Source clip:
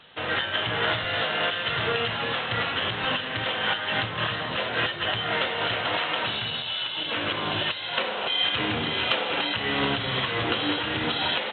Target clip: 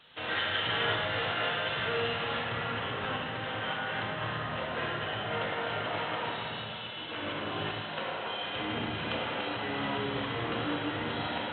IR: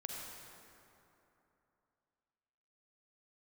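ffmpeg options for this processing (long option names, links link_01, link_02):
-filter_complex "[0:a]asetnsamples=nb_out_samples=441:pad=0,asendcmd='0.83 highshelf g -3;2.44 highshelf g -11',highshelf=frequency=2700:gain=4.5[link_01];[1:a]atrim=start_sample=2205,asetrate=57330,aresample=44100[link_02];[link_01][link_02]afir=irnorm=-1:irlink=0,volume=-1.5dB"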